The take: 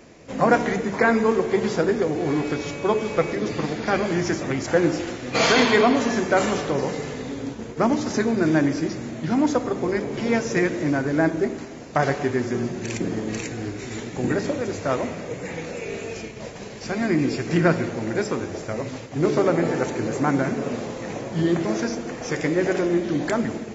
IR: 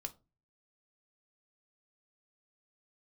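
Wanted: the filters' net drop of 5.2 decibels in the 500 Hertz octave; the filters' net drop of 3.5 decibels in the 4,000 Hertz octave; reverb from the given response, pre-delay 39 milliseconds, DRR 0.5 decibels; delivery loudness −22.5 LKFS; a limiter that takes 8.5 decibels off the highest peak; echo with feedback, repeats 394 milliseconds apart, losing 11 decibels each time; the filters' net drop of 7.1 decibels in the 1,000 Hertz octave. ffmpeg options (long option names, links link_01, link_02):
-filter_complex "[0:a]equalizer=frequency=500:width_type=o:gain=-5,equalizer=frequency=1000:width_type=o:gain=-8,equalizer=frequency=4000:width_type=o:gain=-4,alimiter=limit=-17dB:level=0:latency=1,aecho=1:1:394|788|1182:0.282|0.0789|0.0221,asplit=2[link_01][link_02];[1:a]atrim=start_sample=2205,adelay=39[link_03];[link_02][link_03]afir=irnorm=-1:irlink=0,volume=2.5dB[link_04];[link_01][link_04]amix=inputs=2:normalize=0,volume=2dB"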